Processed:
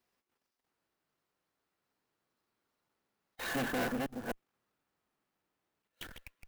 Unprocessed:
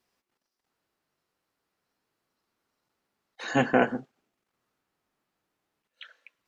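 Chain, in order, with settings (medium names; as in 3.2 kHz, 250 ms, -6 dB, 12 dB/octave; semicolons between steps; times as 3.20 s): chunks repeated in reverse 254 ms, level -9 dB; valve stage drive 32 dB, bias 0.7; in parallel at -5 dB: Schmitt trigger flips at -51.5 dBFS; on the sum: sampling jitter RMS 0.029 ms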